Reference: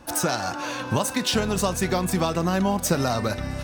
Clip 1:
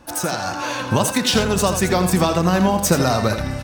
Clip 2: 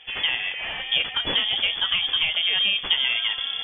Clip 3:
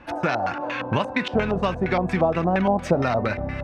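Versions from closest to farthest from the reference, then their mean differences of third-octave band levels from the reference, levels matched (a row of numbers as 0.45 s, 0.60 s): 1, 3, 2; 2.0 dB, 8.5 dB, 18.5 dB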